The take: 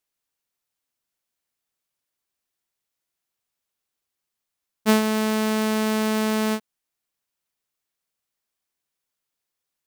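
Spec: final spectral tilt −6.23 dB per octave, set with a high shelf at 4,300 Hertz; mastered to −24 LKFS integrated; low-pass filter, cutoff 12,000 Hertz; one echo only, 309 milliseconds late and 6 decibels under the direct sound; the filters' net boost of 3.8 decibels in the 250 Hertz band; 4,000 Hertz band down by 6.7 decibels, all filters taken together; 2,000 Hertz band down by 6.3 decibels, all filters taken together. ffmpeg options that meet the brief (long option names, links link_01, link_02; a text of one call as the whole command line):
ffmpeg -i in.wav -af "lowpass=12000,equalizer=frequency=250:width_type=o:gain=4.5,equalizer=frequency=2000:width_type=o:gain=-7,equalizer=frequency=4000:width_type=o:gain=-8.5,highshelf=frequency=4300:gain=3.5,aecho=1:1:309:0.501,volume=-5.5dB" out.wav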